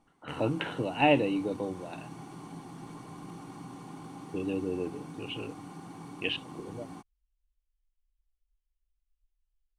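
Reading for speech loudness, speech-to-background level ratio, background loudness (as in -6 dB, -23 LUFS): -31.5 LUFS, 14.0 dB, -45.5 LUFS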